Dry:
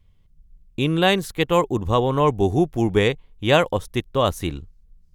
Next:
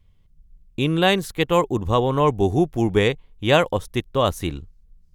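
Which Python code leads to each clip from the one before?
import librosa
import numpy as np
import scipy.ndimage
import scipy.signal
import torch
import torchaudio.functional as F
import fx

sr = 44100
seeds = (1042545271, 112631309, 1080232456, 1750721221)

y = x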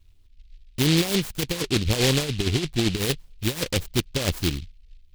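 y = fx.over_compress(x, sr, threshold_db=-20.0, ratio=-0.5)
y = fx.env_flanger(y, sr, rest_ms=3.1, full_db=-16.5)
y = fx.noise_mod_delay(y, sr, seeds[0], noise_hz=3200.0, depth_ms=0.26)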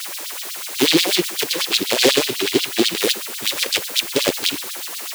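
y = fx.rev_fdn(x, sr, rt60_s=1.4, lf_ratio=1.3, hf_ratio=0.85, size_ms=78.0, drr_db=15.0)
y = fx.quant_dither(y, sr, seeds[1], bits=6, dither='triangular')
y = fx.filter_lfo_highpass(y, sr, shape='sine', hz=8.1, low_hz=300.0, high_hz=4200.0, q=2.4)
y = y * 10.0 ** (5.5 / 20.0)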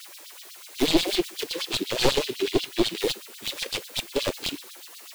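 y = np.minimum(x, 2.0 * 10.0 ** (-14.0 / 20.0) - x)
y = fx.spectral_expand(y, sr, expansion=1.5)
y = y * 10.0 ** (-4.0 / 20.0)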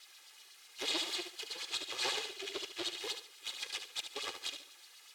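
y = fx.lower_of_two(x, sr, delay_ms=2.4)
y = fx.bandpass_q(y, sr, hz=3100.0, q=0.56)
y = fx.echo_feedback(y, sr, ms=72, feedback_pct=28, wet_db=-8.0)
y = y * 10.0 ** (-8.0 / 20.0)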